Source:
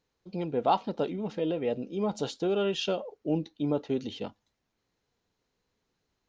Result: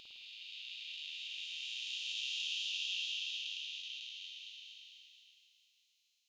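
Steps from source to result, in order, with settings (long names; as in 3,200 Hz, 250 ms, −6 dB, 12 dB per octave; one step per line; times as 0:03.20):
spectrum smeared in time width 1,400 ms
Butterworth high-pass 2,600 Hz 48 dB per octave
pitch vibrato 4.3 Hz 20 cents
spring reverb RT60 1 s, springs 53 ms, chirp 30 ms, DRR 0.5 dB
level +11 dB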